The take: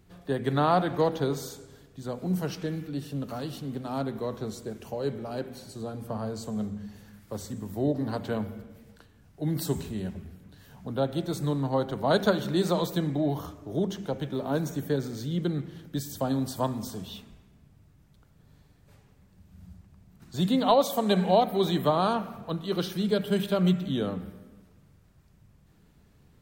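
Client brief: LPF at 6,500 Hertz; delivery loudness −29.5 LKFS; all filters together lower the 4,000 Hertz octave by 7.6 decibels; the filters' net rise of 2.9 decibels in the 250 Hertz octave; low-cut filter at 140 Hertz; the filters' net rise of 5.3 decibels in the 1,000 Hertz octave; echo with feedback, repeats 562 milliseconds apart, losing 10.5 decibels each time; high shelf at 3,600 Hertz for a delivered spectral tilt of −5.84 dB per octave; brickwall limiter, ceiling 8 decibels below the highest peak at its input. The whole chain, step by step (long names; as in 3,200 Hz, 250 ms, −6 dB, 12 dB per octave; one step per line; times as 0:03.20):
high-pass filter 140 Hz
low-pass filter 6,500 Hz
parametric band 250 Hz +4.5 dB
parametric band 1,000 Hz +7.5 dB
high-shelf EQ 3,600 Hz −3.5 dB
parametric band 4,000 Hz −7 dB
brickwall limiter −13.5 dBFS
repeating echo 562 ms, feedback 30%, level −10.5 dB
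level −2 dB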